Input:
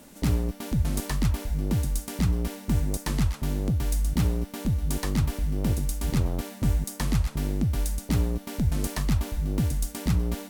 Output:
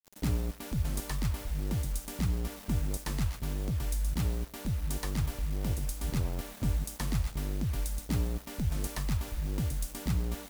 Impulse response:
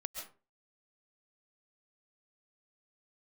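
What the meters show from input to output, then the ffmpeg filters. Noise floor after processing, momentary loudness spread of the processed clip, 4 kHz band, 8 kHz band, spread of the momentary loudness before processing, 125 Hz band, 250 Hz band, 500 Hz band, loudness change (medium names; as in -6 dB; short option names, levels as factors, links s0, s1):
-49 dBFS, 3 LU, -4.5 dB, -5.0 dB, 3 LU, -6.5 dB, -8.0 dB, -6.5 dB, -6.0 dB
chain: -filter_complex "[0:a]adynamicequalizer=threshold=0.00891:dfrequency=250:dqfactor=1.3:tfrequency=250:tqfactor=1.3:attack=5:release=100:ratio=0.375:range=2.5:mode=cutabove:tftype=bell,acrusher=bits=6:mix=0:aa=0.000001,asplit=2[s0][s1];[1:a]atrim=start_sample=2205,highshelf=f=12000:g=8[s2];[s1][s2]afir=irnorm=-1:irlink=0,volume=0.299[s3];[s0][s3]amix=inputs=2:normalize=0,volume=0.422"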